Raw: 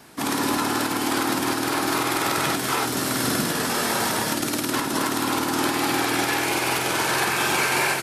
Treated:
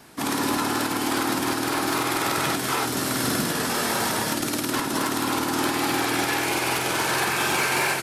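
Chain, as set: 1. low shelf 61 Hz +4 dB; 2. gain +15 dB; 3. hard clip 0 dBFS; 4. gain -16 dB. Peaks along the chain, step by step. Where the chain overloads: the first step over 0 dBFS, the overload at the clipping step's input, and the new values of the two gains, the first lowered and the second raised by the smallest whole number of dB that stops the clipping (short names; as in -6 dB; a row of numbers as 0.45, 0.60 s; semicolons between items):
-11.0, +4.0, 0.0, -16.0 dBFS; step 2, 4.0 dB; step 2 +11 dB, step 4 -12 dB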